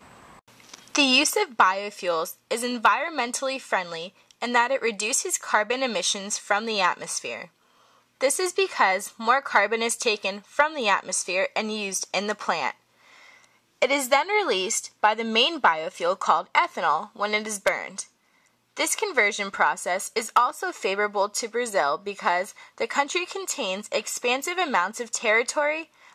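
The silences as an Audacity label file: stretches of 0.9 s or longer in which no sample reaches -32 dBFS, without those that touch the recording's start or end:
12.710000	13.820000	silence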